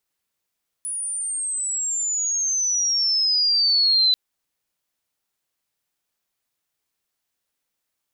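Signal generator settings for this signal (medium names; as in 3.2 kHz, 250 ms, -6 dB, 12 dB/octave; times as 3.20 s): sweep logarithmic 9.9 kHz -> 4 kHz -25.5 dBFS -> -14 dBFS 3.29 s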